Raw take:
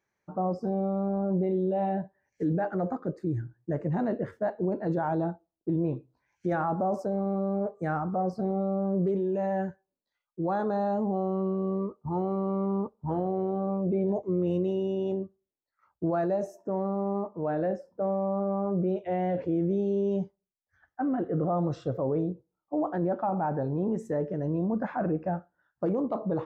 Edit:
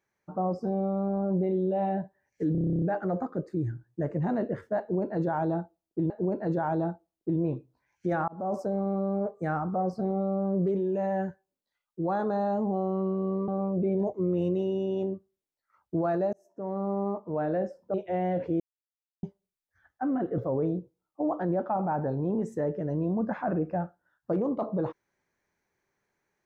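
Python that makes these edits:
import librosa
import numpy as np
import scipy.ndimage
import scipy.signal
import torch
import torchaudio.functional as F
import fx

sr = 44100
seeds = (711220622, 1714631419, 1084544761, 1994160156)

y = fx.edit(x, sr, fx.stutter(start_s=2.52, slice_s=0.03, count=11),
    fx.repeat(start_s=4.5, length_s=1.3, count=2),
    fx.fade_in_span(start_s=6.68, length_s=0.28),
    fx.cut(start_s=11.88, length_s=1.69),
    fx.fade_in_span(start_s=16.42, length_s=0.55),
    fx.cut(start_s=18.03, length_s=0.89),
    fx.silence(start_s=19.58, length_s=0.63),
    fx.cut(start_s=21.36, length_s=0.55), tone=tone)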